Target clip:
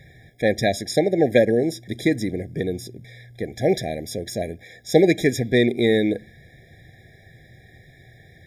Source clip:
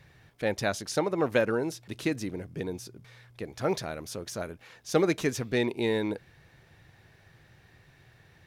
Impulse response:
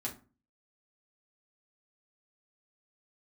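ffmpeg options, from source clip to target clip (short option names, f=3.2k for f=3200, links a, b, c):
-filter_complex "[0:a]asplit=2[a][b];[1:a]atrim=start_sample=2205,asetrate=41013,aresample=44100[c];[b][c]afir=irnorm=-1:irlink=0,volume=-19.5dB[d];[a][d]amix=inputs=2:normalize=0,afftfilt=real='re*eq(mod(floor(b*sr/1024/810),2),0)':imag='im*eq(mod(floor(b*sr/1024/810),2),0)':win_size=1024:overlap=0.75,volume=8.5dB"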